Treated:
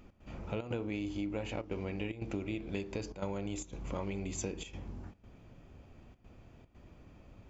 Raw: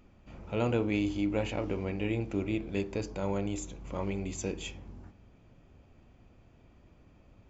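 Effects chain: trance gate "x.xxxx.xxxxxxxx" 149 bpm -12 dB; 1.67–4.27 s: dynamic bell 3.7 kHz, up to +3 dB, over -51 dBFS, Q 0.76; compression 6:1, threshold -37 dBFS, peak gain reduction 12.5 dB; trim +3 dB

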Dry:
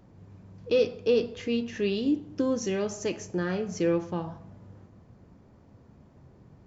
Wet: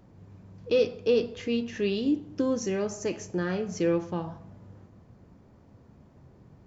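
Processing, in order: 2.63–3.12 s: peaking EQ 3.4 kHz -7.5 dB 0.53 oct

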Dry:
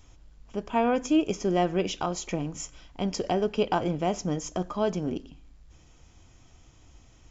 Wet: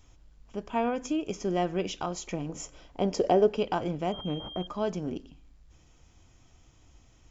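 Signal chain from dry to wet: 0.88–1.36 s: compression, threshold -22 dBFS, peak gain reduction 5 dB; 2.49–3.57 s: peaking EQ 500 Hz +10 dB 1.7 oct; 4.12–4.67 s: class-D stage that switches slowly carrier 3.2 kHz; trim -3.5 dB

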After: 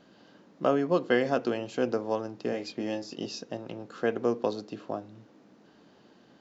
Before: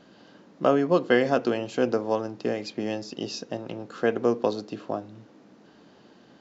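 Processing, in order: 2.50–3.26 s: doubling 22 ms -6 dB; trim -4 dB

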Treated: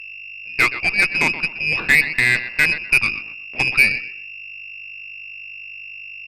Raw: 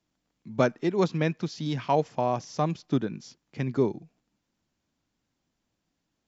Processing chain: treble shelf 2.1 kHz +10 dB; level rider gain up to 11 dB; mains buzz 50 Hz, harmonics 13, -37 dBFS -9 dB/octave; frequency inversion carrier 2.7 kHz; on a send: feedback delay 124 ms, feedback 29%, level -13 dB; on the sum: Chebyshev shaper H 8 -22 dB, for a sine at -1.5 dBFS

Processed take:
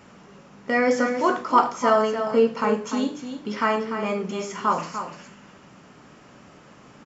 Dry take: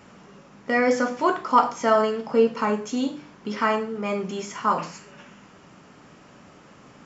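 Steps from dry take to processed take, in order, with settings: delay 295 ms -9 dB

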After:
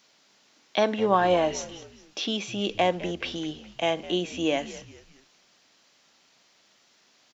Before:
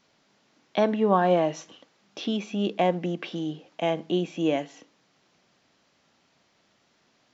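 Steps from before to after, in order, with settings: high-pass 260 Hz 6 dB/octave; treble shelf 2.6 kHz +10 dB; on a send: frequency-shifting echo 207 ms, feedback 40%, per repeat -100 Hz, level -16.5 dB

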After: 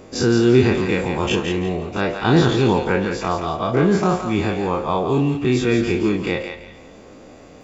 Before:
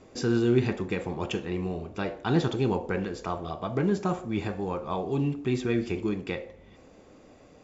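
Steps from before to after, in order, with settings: every event in the spectrogram widened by 60 ms; thinning echo 169 ms, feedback 29%, high-pass 760 Hz, level -6 dB; trim +6.5 dB

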